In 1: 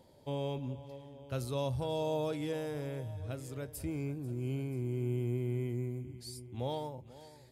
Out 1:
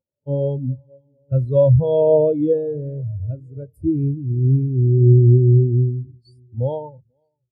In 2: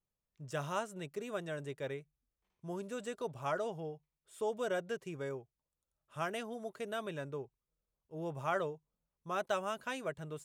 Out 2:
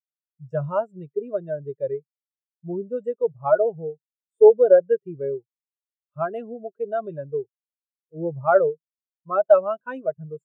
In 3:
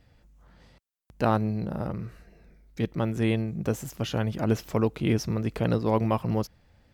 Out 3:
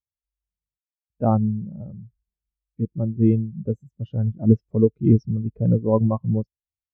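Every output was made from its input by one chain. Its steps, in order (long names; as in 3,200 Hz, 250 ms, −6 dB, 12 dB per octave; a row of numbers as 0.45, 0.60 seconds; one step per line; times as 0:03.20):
every bin expanded away from the loudest bin 2.5 to 1
normalise the peak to −3 dBFS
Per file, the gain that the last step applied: +19.5, +18.0, +5.5 decibels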